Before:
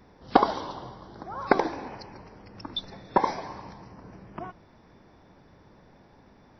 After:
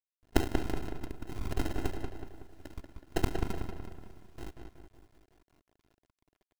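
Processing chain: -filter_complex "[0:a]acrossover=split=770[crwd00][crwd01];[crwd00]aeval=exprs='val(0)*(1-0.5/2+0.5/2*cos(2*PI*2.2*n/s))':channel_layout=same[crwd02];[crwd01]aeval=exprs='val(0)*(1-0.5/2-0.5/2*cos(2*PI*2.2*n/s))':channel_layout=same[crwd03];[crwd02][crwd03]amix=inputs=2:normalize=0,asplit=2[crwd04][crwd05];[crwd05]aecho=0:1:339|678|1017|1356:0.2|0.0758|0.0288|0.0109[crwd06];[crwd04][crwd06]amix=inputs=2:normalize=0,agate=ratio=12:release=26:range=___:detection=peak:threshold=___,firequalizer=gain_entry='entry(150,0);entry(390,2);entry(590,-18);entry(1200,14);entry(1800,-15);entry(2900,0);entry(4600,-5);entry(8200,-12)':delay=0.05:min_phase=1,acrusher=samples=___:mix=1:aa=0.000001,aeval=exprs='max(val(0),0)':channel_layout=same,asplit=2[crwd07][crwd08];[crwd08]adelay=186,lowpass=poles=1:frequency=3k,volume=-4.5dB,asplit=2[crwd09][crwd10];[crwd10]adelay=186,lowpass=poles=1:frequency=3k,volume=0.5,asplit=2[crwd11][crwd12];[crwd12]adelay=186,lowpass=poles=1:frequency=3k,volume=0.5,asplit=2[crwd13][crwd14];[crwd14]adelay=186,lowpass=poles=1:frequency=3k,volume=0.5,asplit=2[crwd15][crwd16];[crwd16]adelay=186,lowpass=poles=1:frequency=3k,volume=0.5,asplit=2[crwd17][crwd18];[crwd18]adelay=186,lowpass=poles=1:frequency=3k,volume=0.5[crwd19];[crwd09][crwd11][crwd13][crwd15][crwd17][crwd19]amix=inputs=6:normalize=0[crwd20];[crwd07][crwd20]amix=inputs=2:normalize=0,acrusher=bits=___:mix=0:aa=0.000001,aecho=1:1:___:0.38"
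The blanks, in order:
-18dB, -46dB, 38, 10, 2.9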